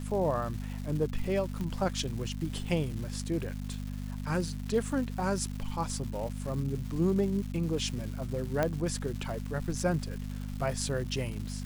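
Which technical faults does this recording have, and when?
crackle 470/s -39 dBFS
hum 50 Hz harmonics 5 -37 dBFS
1.61 pop -24 dBFS
8.63 pop -15 dBFS

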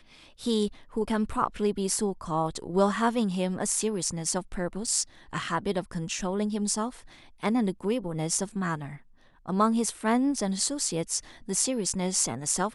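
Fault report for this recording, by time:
4.87 gap 3.8 ms

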